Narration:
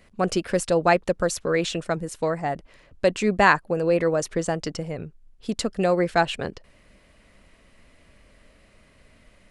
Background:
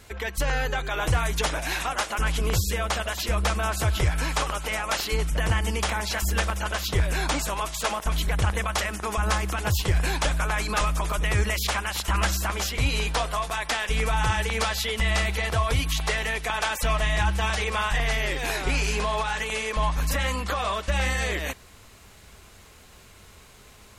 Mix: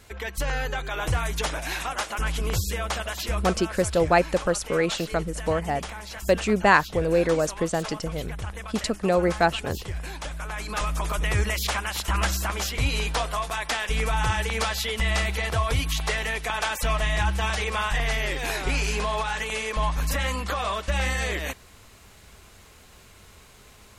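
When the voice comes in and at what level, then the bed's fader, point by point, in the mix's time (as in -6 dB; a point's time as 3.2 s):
3.25 s, -0.5 dB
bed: 3.4 s -2 dB
3.61 s -10 dB
10.3 s -10 dB
11.05 s -0.5 dB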